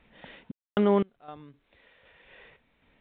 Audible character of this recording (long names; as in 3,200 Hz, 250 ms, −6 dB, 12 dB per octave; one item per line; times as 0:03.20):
sample-and-hold tremolo 3.9 Hz, depth 100%
mu-law